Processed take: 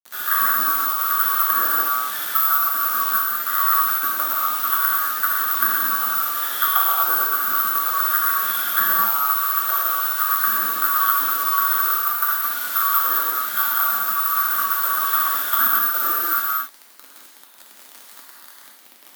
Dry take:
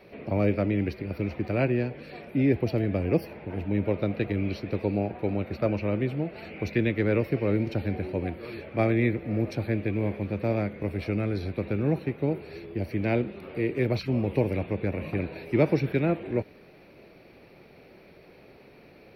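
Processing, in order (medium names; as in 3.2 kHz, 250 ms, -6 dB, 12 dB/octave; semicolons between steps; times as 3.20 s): split-band scrambler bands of 1 kHz; low-pass that closes with the level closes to 740 Hz, closed at -24 dBFS; tilt shelf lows -4.5 dB, about 1.1 kHz; bit crusher 7-bit; careless resampling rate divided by 3×, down none, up zero stuff; Chebyshev high-pass 200 Hz, order 6; gated-style reverb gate 280 ms flat, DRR -4.5 dB; trim +4.5 dB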